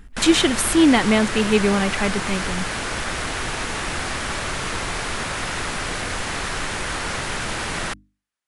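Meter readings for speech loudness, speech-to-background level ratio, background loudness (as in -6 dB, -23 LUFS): -19.0 LUFS, 7.0 dB, -26.0 LUFS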